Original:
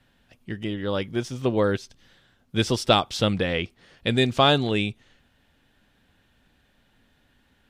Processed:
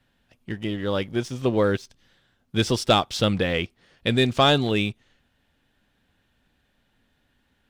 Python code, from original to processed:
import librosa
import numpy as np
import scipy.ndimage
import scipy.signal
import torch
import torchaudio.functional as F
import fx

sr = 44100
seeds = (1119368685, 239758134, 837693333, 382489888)

y = fx.leveller(x, sr, passes=1)
y = y * 10.0 ** (-2.5 / 20.0)